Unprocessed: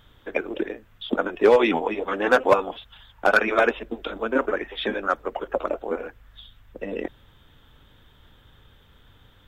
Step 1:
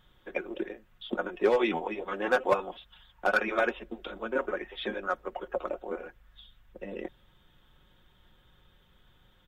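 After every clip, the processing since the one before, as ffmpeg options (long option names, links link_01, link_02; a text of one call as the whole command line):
ffmpeg -i in.wav -af "aecho=1:1:5.5:0.47,volume=-8.5dB" out.wav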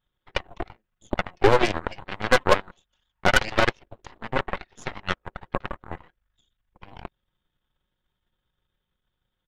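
ffmpeg -i in.wav -af "aeval=exprs='0.211*(cos(1*acos(clip(val(0)/0.211,-1,1)))-cos(1*PI/2))+0.0299*(cos(3*acos(clip(val(0)/0.211,-1,1)))-cos(3*PI/2))+0.0596*(cos(4*acos(clip(val(0)/0.211,-1,1)))-cos(4*PI/2))+0.00266*(cos(5*acos(clip(val(0)/0.211,-1,1)))-cos(5*PI/2))+0.0211*(cos(7*acos(clip(val(0)/0.211,-1,1)))-cos(7*PI/2))':channel_layout=same,volume=7dB" out.wav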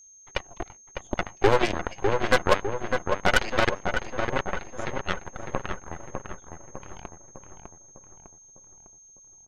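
ffmpeg -i in.wav -filter_complex "[0:a]aeval=exprs='val(0)+0.00447*sin(2*PI*6400*n/s)':channel_layout=same,asplit=2[link_01][link_02];[link_02]adelay=603,lowpass=frequency=1700:poles=1,volume=-4.5dB,asplit=2[link_03][link_04];[link_04]adelay=603,lowpass=frequency=1700:poles=1,volume=0.53,asplit=2[link_05][link_06];[link_06]adelay=603,lowpass=frequency=1700:poles=1,volume=0.53,asplit=2[link_07][link_08];[link_08]adelay=603,lowpass=frequency=1700:poles=1,volume=0.53,asplit=2[link_09][link_10];[link_10]adelay=603,lowpass=frequency=1700:poles=1,volume=0.53,asplit=2[link_11][link_12];[link_12]adelay=603,lowpass=frequency=1700:poles=1,volume=0.53,asplit=2[link_13][link_14];[link_14]adelay=603,lowpass=frequency=1700:poles=1,volume=0.53[link_15];[link_01][link_03][link_05][link_07][link_09][link_11][link_13][link_15]amix=inputs=8:normalize=0,volume=-2.5dB" out.wav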